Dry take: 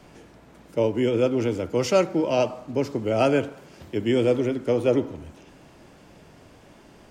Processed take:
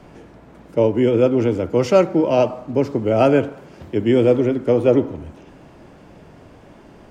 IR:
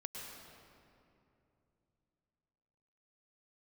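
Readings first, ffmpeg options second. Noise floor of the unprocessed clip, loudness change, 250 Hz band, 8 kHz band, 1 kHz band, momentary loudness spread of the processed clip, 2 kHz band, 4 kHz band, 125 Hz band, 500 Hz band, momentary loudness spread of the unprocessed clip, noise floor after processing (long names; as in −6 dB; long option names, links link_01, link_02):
−51 dBFS, +6.0 dB, +6.5 dB, can't be measured, +5.5 dB, 9 LU, +2.5 dB, 0.0 dB, +6.5 dB, +6.0 dB, 9 LU, −46 dBFS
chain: -af "highshelf=frequency=2600:gain=-10.5,volume=6.5dB"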